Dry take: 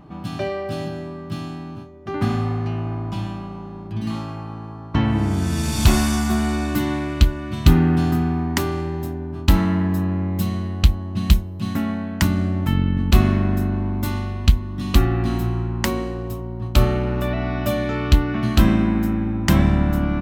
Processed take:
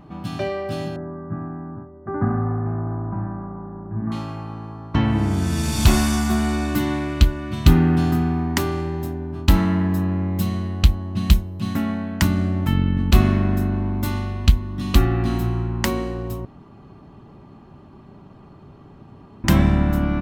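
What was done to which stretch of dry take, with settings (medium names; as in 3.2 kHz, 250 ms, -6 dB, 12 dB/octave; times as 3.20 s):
0.96–4.12 s: steep low-pass 1.7 kHz 48 dB/octave
16.45–19.44 s: room tone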